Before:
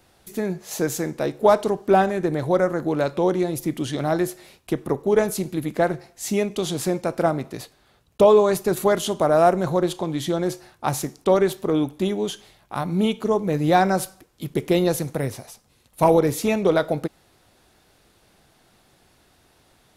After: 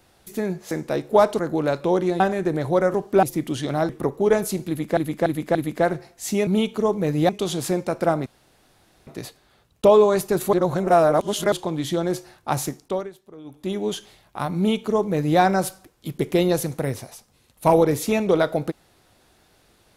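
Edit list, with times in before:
0.71–1.01 s: delete
1.69–1.98 s: swap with 2.72–3.53 s
4.19–4.75 s: delete
5.54–5.83 s: loop, 4 plays
7.43 s: insert room tone 0.81 s
8.89–9.88 s: reverse
11.03–12.23 s: dip -21 dB, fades 0.43 s
12.93–13.75 s: copy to 6.46 s

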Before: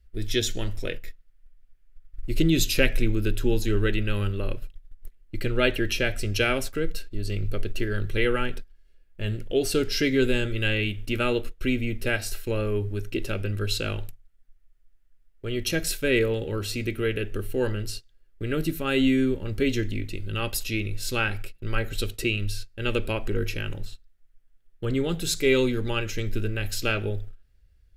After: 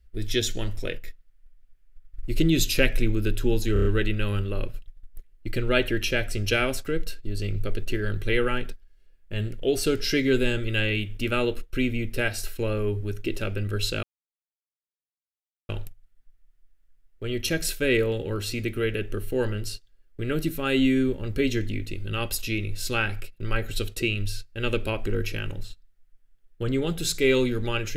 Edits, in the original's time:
3.73 s: stutter 0.03 s, 5 plays
13.91 s: insert silence 1.66 s

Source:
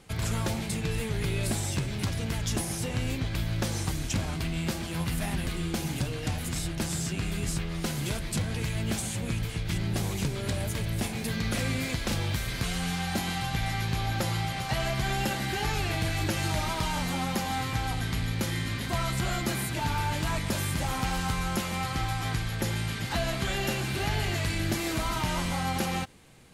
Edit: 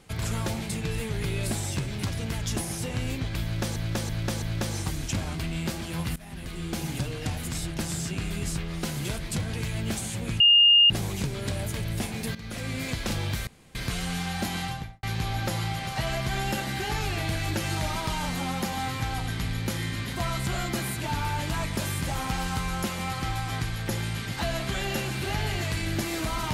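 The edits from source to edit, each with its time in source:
3.43–3.76 s: loop, 4 plays
5.17–5.82 s: fade in, from -20 dB
9.41–9.91 s: bleep 2.83 kHz -13.5 dBFS
11.36–11.92 s: fade in linear, from -13.5 dB
12.48 s: insert room tone 0.28 s
13.36–13.76 s: studio fade out

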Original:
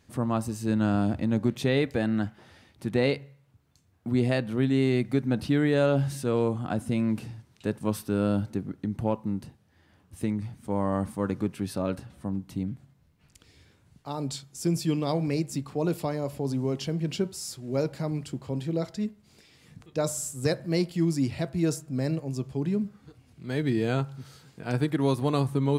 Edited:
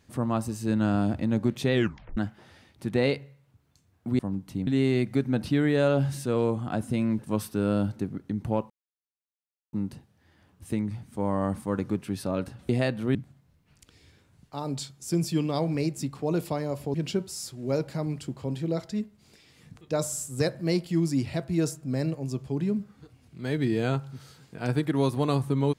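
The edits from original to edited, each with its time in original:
1.73 s: tape stop 0.44 s
4.19–4.65 s: swap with 12.20–12.68 s
7.17–7.73 s: delete
9.24 s: insert silence 1.03 s
16.47–16.99 s: delete

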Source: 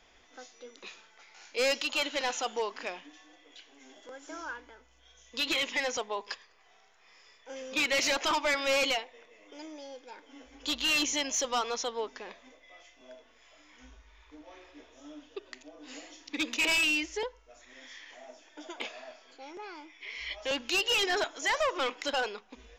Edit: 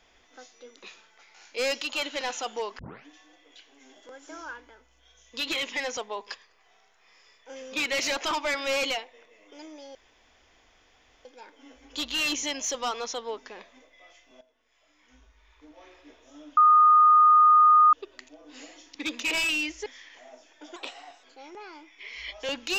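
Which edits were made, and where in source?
2.79 s: tape start 0.27 s
9.95 s: insert room tone 1.30 s
13.11–14.55 s: fade in, from -16 dB
15.27 s: add tone 1.23 kHz -13.5 dBFS 1.36 s
17.20–17.82 s: delete
18.72–19.26 s: speed 113%

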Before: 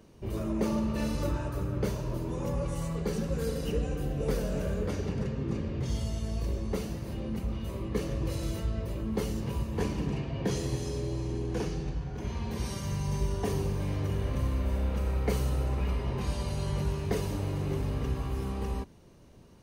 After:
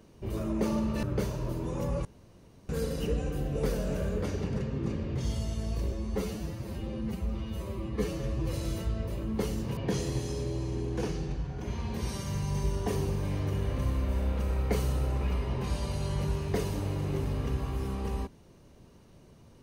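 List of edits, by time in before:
1.03–1.68 s: delete
2.70–3.34 s: room tone
6.57–8.31 s: stretch 1.5×
9.55–10.34 s: delete

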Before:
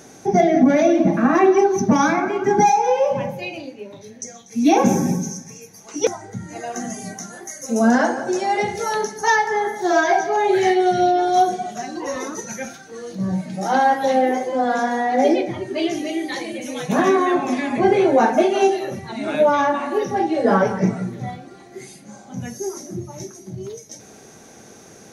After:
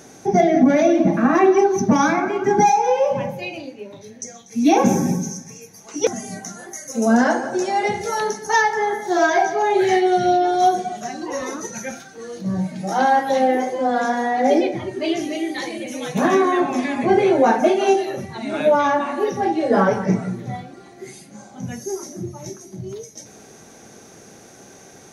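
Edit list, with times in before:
6.13–6.87 s: delete

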